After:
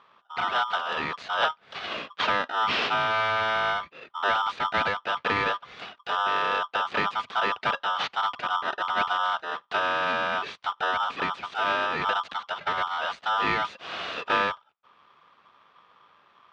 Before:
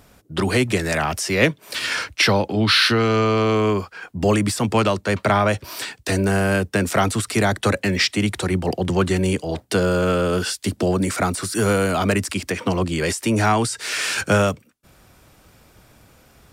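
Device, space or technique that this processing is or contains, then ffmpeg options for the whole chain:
ring modulator pedal into a guitar cabinet: -af "aeval=exprs='val(0)*sgn(sin(2*PI*1100*n/s))':channel_layout=same,highpass=100,equalizer=frequency=120:width_type=q:width=4:gain=-6,equalizer=frequency=320:width_type=q:width=4:gain=-5,equalizer=frequency=1200:width_type=q:width=4:gain=5,lowpass=frequency=3600:width=0.5412,lowpass=frequency=3600:width=1.3066,volume=-8dB"

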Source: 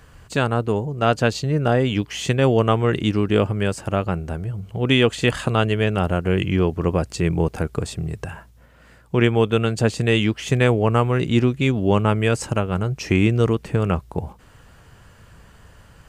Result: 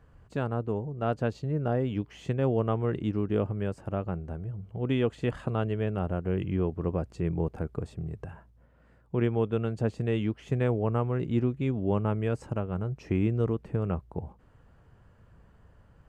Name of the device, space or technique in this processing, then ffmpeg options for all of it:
through cloth: -af "highshelf=frequency=2000:gain=-17.5,volume=-8.5dB"

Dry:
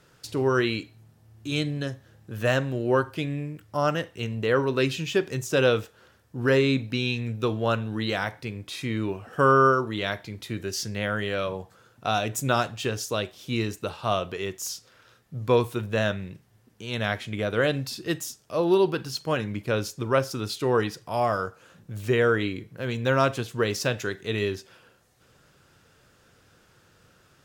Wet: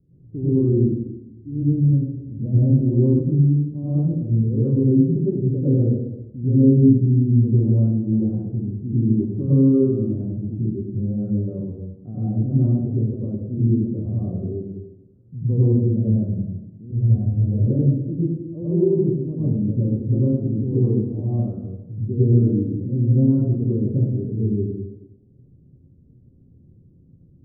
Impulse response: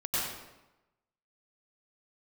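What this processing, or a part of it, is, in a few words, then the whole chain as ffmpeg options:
next room: -filter_complex "[0:a]lowpass=frequency=290:width=0.5412,lowpass=frequency=290:width=1.3066[link_01];[1:a]atrim=start_sample=2205[link_02];[link_01][link_02]afir=irnorm=-1:irlink=0,asplit=3[link_03][link_04][link_05];[link_03]afade=type=out:start_time=16.91:duration=0.02[link_06];[link_04]asubboost=boost=7:cutoff=73,afade=type=in:start_time=16.91:duration=0.02,afade=type=out:start_time=17.66:duration=0.02[link_07];[link_05]afade=type=in:start_time=17.66:duration=0.02[link_08];[link_06][link_07][link_08]amix=inputs=3:normalize=0,volume=4dB"

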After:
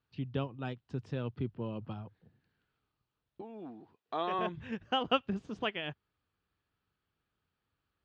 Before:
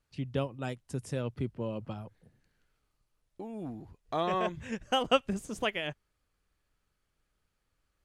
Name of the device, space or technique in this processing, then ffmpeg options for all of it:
guitar cabinet: -filter_complex "[0:a]asettb=1/sr,asplit=3[link_01][link_02][link_03];[link_01]atrim=end=3.414[link_04];[link_02]atrim=start=3.41:end=4.39,asetpts=PTS-STARTPTS,afade=type=in:duration=0.004:curve=qsin,afade=type=out:start_time=0.976:duration=0.004:curve=qsin,highpass=300[link_05];[link_03]atrim=start=4.386[link_06];[link_04][link_05]acrossfade=duration=0.004:curve1=hsin:curve2=qsin[link_07];[link_07][link_06]acrossfade=duration=0.004:curve1=qsin:curve2=hsin,highpass=83,equalizer=frequency=98:width_type=q:width=4:gain=3,equalizer=frequency=570:width_type=q:width=4:gain=-6,equalizer=frequency=2100:width_type=q:width=4:gain=-5,lowpass=frequency=4100:width=0.5412,lowpass=frequency=4100:width=1.3066,volume=-1.5dB"

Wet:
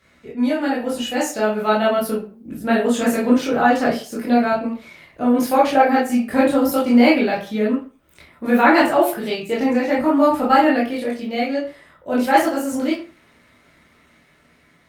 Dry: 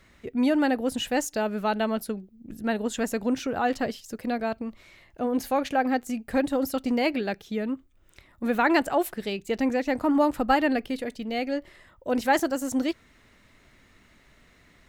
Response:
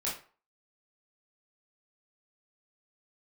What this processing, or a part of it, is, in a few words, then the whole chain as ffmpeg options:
far-field microphone of a smart speaker: -filter_complex "[1:a]atrim=start_sample=2205[link_01];[0:a][link_01]afir=irnorm=-1:irlink=0,highpass=88,dynaudnorm=framelen=640:gausssize=5:maxgain=14dB,volume=-1dB" -ar 48000 -c:a libopus -b:a 48k

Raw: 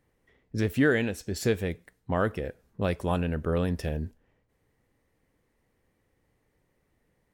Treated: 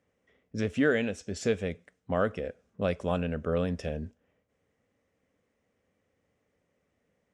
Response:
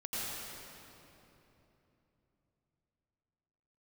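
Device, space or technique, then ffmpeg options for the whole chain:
car door speaker: -af "highpass=100,equalizer=frequency=130:width_type=q:width=4:gain=-10,equalizer=frequency=340:width_type=q:width=4:gain=-7,equalizer=frequency=570:width_type=q:width=4:gain=3,equalizer=frequency=910:width_type=q:width=4:gain=-7,equalizer=frequency=1800:width_type=q:width=4:gain=-4,equalizer=frequency=4300:width_type=q:width=4:gain=-8,lowpass=frequency=7500:width=0.5412,lowpass=frequency=7500:width=1.3066"

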